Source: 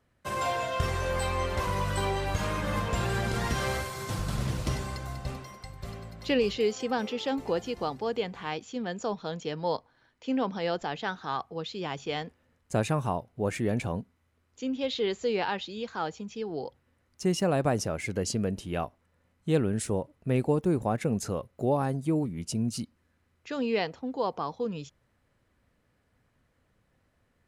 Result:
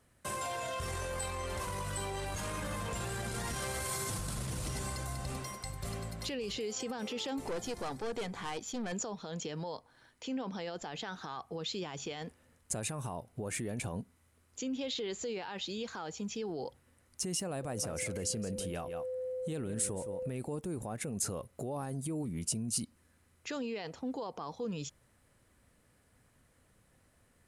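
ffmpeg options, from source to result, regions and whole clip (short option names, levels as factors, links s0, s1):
-filter_complex "[0:a]asettb=1/sr,asplit=3[s0][s1][s2];[s0]atrim=end=7.484[s3];[s1]atrim=start=7.48:end=8.93,asetpts=PTS-STARTPTS,afade=t=in:d=0.004:c=qsin,afade=t=out:st=1.446:d=0.004:c=qsin,bandreject=f=2800:w=7.3,aeval=exprs='(tanh(35.5*val(0)+0.45)-tanh(0.45))/35.5':c=same[s4];[s2]atrim=start=8.926[s5];[s3][s4]acrossfade=d=0.004:c1=hsin:c2=qsin[s6];[s6][s5]acrossfade=d=0.004:c1=qsin:c2=hsin,asettb=1/sr,asplit=3[s7][s8][s9];[s7]atrim=end=17.634[s10];[s8]atrim=start=17.63:end=20.31,asetpts=PTS-STARTPTS,afade=t=in:d=0.004:c=qsin,afade=t=out:st=2.676:d=0.004:c=qsin,aeval=exprs='val(0)+0.0158*sin(2*PI*510*n/s)':c=same,aecho=1:1:168:0.178,atrim=end_sample=118188[s11];[s9]atrim=start=20.306[s12];[s10][s11]acrossfade=d=0.004:c1=hsin:c2=qsin[s13];[s13][s12]acrossfade=d=0.004:c1=qsin:c2=hsin,acompressor=threshold=0.0178:ratio=2.5,alimiter=level_in=2.66:limit=0.0631:level=0:latency=1:release=21,volume=0.376,equalizer=f=9500:t=o:w=0.98:g=13.5,volume=1.26"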